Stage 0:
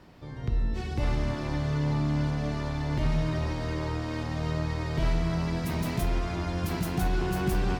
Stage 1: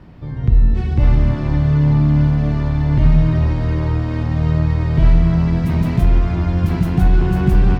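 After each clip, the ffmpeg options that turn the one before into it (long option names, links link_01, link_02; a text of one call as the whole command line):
ffmpeg -i in.wav -af "bass=frequency=250:gain=10,treble=frequency=4000:gain=-10,volume=5.5dB" out.wav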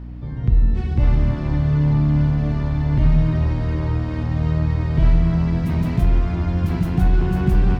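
ffmpeg -i in.wav -af "aeval=exprs='val(0)+0.0398*(sin(2*PI*60*n/s)+sin(2*PI*2*60*n/s)/2+sin(2*PI*3*60*n/s)/3+sin(2*PI*4*60*n/s)/4+sin(2*PI*5*60*n/s)/5)':channel_layout=same,volume=-3.5dB" out.wav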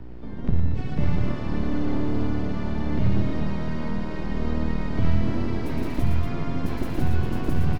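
ffmpeg -i in.wav -filter_complex "[0:a]acrossover=split=210|3000[link_01][link_02][link_03];[link_02]acompressor=threshold=-27dB:ratio=6[link_04];[link_01][link_04][link_03]amix=inputs=3:normalize=0,acrossover=split=370|810[link_05][link_06][link_07];[link_05]aeval=exprs='abs(val(0))':channel_layout=same[link_08];[link_07]aecho=1:1:113.7|236.2:0.631|0.447[link_09];[link_08][link_06][link_09]amix=inputs=3:normalize=0,volume=-3dB" out.wav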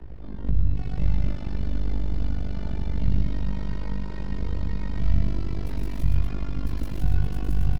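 ffmpeg -i in.wav -filter_complex "[0:a]acrossover=split=160|3000[link_01][link_02][link_03];[link_02]acompressor=threshold=-38dB:ratio=2.5[link_04];[link_01][link_04][link_03]amix=inputs=3:normalize=0,asplit=2[link_05][link_06];[link_06]adelay=15,volume=-4.5dB[link_07];[link_05][link_07]amix=inputs=2:normalize=0,tremolo=f=49:d=0.889" out.wav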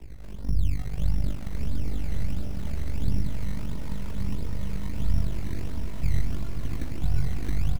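ffmpeg -i in.wav -af "flanger=delay=0.3:depth=1.6:regen=-41:speed=1.6:shape=sinusoidal,acrusher=samples=15:mix=1:aa=0.000001:lfo=1:lforange=15:lforate=1.5,aecho=1:1:1130:0.531" out.wav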